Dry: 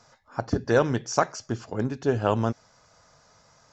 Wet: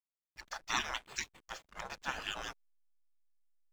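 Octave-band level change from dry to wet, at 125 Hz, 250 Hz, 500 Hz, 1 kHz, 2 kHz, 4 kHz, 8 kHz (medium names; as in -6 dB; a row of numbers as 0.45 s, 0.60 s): -29.5 dB, -26.5 dB, -27.0 dB, -12.0 dB, -5.0 dB, +0.5 dB, no reading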